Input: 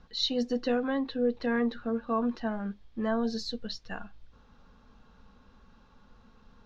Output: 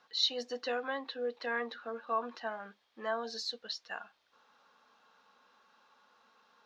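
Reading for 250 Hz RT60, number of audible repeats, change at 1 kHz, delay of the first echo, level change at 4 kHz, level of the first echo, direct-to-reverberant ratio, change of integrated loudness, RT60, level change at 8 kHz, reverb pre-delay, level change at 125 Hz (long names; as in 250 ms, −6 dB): no reverb audible, no echo audible, −1.0 dB, no echo audible, 0.0 dB, no echo audible, no reverb audible, −5.5 dB, no reverb audible, can't be measured, no reverb audible, below −20 dB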